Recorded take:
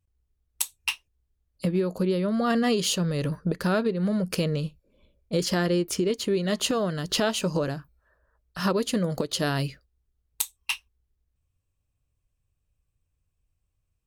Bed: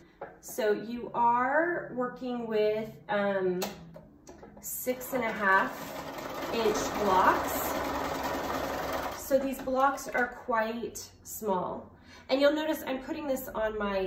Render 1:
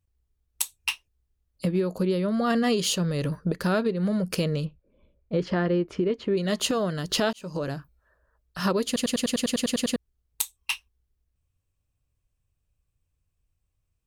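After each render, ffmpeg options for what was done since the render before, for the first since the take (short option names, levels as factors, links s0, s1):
-filter_complex "[0:a]asplit=3[s0][s1][s2];[s0]afade=t=out:st=4.64:d=0.02[s3];[s1]lowpass=2100,afade=t=in:st=4.64:d=0.02,afade=t=out:st=6.36:d=0.02[s4];[s2]afade=t=in:st=6.36:d=0.02[s5];[s3][s4][s5]amix=inputs=3:normalize=0,asplit=13[s6][s7][s8][s9][s10][s11][s12][s13][s14][s15][s16][s17][s18];[s6]atrim=end=7.33,asetpts=PTS-STARTPTS,afade=t=out:st=7.326:d=0.004:c=hsin[s19];[s7]atrim=start=7.33:end=8.962,asetpts=PTS-STARTPTS,afade=t=in:d=0.42[s20];[s8]atrim=start=8.858:end=8.962[s21];[s9]atrim=start=8.858:end=8.962[s22];[s10]atrim=start=8.858:end=8.962[s23];[s11]atrim=start=8.858:end=8.962[s24];[s12]atrim=start=8.858:end=8.962[s25];[s13]atrim=start=8.858:end=8.962[s26];[s14]atrim=start=8.858:end=8.962[s27];[s15]atrim=start=8.858:end=8.962[s28];[s16]atrim=start=8.858:end=8.962[s29];[s17]atrim=start=8.858:end=8.962[s30];[s18]atrim=start=9.958[s31];[s19][s20]concat=n=2:v=0:a=1[s32];[s32][s21]acrossfade=d=0.004:c1=hsin:c2=hsin[s33];[s33][s22]acrossfade=d=0.004:c1=hsin:c2=hsin[s34];[s34][s23]acrossfade=d=0.004:c1=hsin:c2=hsin[s35];[s35][s24]acrossfade=d=0.004:c1=hsin:c2=hsin[s36];[s36][s25]acrossfade=d=0.004:c1=hsin:c2=hsin[s37];[s37][s26]acrossfade=d=0.004:c1=hsin:c2=hsin[s38];[s38][s27]acrossfade=d=0.004:c1=hsin:c2=hsin[s39];[s39][s28]acrossfade=d=0.004:c1=hsin:c2=hsin[s40];[s40][s29]acrossfade=d=0.004:c1=hsin:c2=hsin[s41];[s41][s30]acrossfade=d=0.004:c1=hsin:c2=hsin[s42];[s42][s31]acrossfade=d=0.004:c1=hsin:c2=hsin"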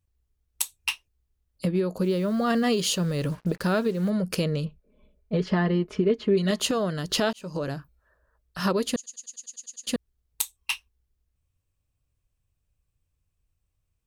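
-filter_complex "[0:a]asettb=1/sr,asplit=3[s0][s1][s2];[s0]atrim=end=2.024[s3];[s1]atrim=start=2.02:end=4.1,asetpts=PTS-STARTPTS,afade=t=in:d=0.004:c=qsin,afade=t=out:st=2.076:d=0.004:c=qsin,acrusher=bits=7:mix=0:aa=0.5[s4];[s2]atrim=start=4.096[s5];[s3][s4]acrossfade=d=0.004:c1=hsin:c2=qsin[s6];[s6][s5]acrossfade=d=0.004:c1=qsin:c2=hsin,asettb=1/sr,asplit=3[s7][s8][s9];[s7]atrim=end=4.664[s10];[s8]atrim=start=4.66:end=6.51,asetpts=PTS-STARTPTS,afade=t=in:d=0.004:c=qsin,afade=t=out:st=1.846:d=0.004:c=qsin,aecho=1:1:4.7:0.65,atrim=end_sample=81585[s11];[s9]atrim=start=6.506[s12];[s10][s11]acrossfade=d=0.004:c1=hsin:c2=qsin[s13];[s13][s12]acrossfade=d=0.004:c1=qsin:c2=hsin,asettb=1/sr,asplit=3[s14][s15][s16];[s14]atrim=end=8.964[s17];[s15]atrim=start=8.96:end=9.87,asetpts=PTS-STARTPTS,afade=t=in:d=0.004:c=qsin,afade=t=out:st=0.906:d=0.004:c=qsin,bandpass=f=6600:t=q:w=10[s18];[s16]atrim=start=9.866[s19];[s17][s18]acrossfade=d=0.004:c1=hsin:c2=qsin[s20];[s20][s19]acrossfade=d=0.004:c1=qsin:c2=hsin"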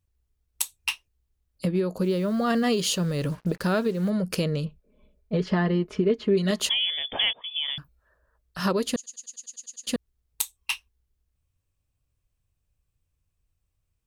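-filter_complex "[0:a]asettb=1/sr,asplit=3[s0][s1][s2];[s0]atrim=end=6.694[s3];[s1]atrim=start=6.69:end=7.78,asetpts=PTS-STARTPTS,afade=t=in:d=0.004:c=qsin,afade=t=out:st=1.086:d=0.004:c=qsin,lowpass=f=3100:t=q:w=0.5098,lowpass=f=3100:t=q:w=0.6013,lowpass=f=3100:t=q:w=0.9,lowpass=f=3100:t=q:w=2.563,afreqshift=-3600[s4];[s2]atrim=start=7.776[s5];[s3][s4]acrossfade=d=0.004:c1=hsin:c2=qsin[s6];[s6][s5]acrossfade=d=0.004:c1=qsin:c2=hsin"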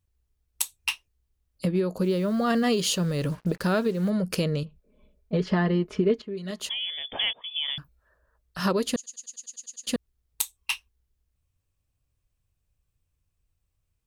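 -filter_complex "[0:a]asettb=1/sr,asplit=3[s0][s1][s2];[s0]atrim=end=4.634[s3];[s1]atrim=start=4.63:end=5.33,asetpts=PTS-STARTPTS,afade=t=in:d=0.004:c=qsin,afade=t=out:st=0.696:d=0.004:c=qsin,acompressor=threshold=0.00631:ratio=2:attack=3.2:release=140:knee=1:detection=peak[s4];[s2]atrim=start=5.326[s5];[s3][s4]acrossfade=d=0.004:c1=hsin:c2=qsin[s6];[s6][s5]acrossfade=d=0.004:c1=qsin:c2=hsin,asplit=2[s7][s8];[s7]atrim=end=6.22,asetpts=PTS-STARTPTS,afade=t=out:st=6.216:d=0.004:c=hsin:silence=0.177828[s9];[s8]atrim=start=6.22,asetpts=PTS-STARTPTS,afade=t=in:d=1.5:silence=0.177828[s10];[s9][s10]concat=n=2:v=0:a=1"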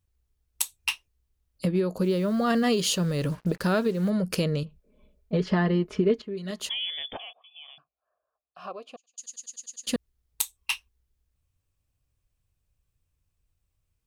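-filter_complex "[0:a]asettb=1/sr,asplit=3[s0][s1][s2];[s0]atrim=end=7.174[s3];[s1]atrim=start=7.17:end=9.18,asetpts=PTS-STARTPTS,afade=t=in:d=0.004:c=qsin,afade=t=out:st=2.006:d=0.004:c=qsin,asplit=3[s4][s5][s6];[s4]bandpass=f=730:t=q:w=8,volume=1[s7];[s5]bandpass=f=1090:t=q:w=8,volume=0.501[s8];[s6]bandpass=f=2440:t=q:w=8,volume=0.355[s9];[s7][s8][s9]amix=inputs=3:normalize=0[s10];[s2]atrim=start=9.176[s11];[s3][s10]acrossfade=d=0.004:c1=hsin:c2=qsin[s12];[s12][s11]acrossfade=d=0.004:c1=qsin:c2=hsin"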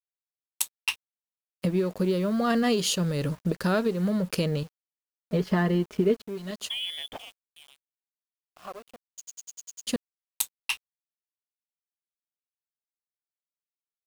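-af "aeval=exprs='sgn(val(0))*max(abs(val(0))-0.00501,0)':c=same,acrusher=bits=8:mix=0:aa=0.000001"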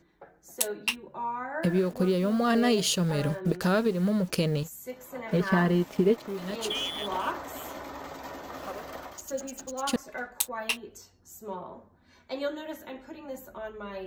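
-filter_complex "[1:a]volume=0.398[s0];[0:a][s0]amix=inputs=2:normalize=0"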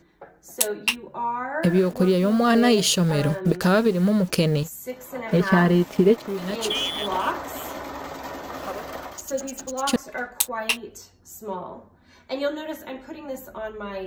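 -af "volume=2"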